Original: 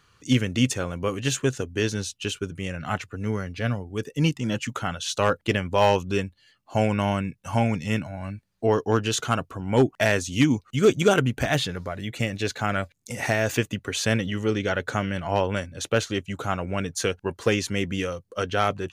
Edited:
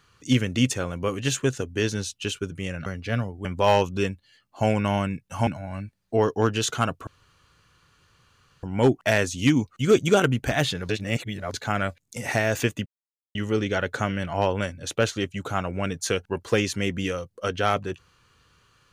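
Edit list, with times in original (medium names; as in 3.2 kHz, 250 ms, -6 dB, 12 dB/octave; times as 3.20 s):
2.86–3.38 s: delete
3.97–5.59 s: delete
7.61–7.97 s: delete
9.57 s: insert room tone 1.56 s
11.83–12.48 s: reverse
13.80–14.29 s: mute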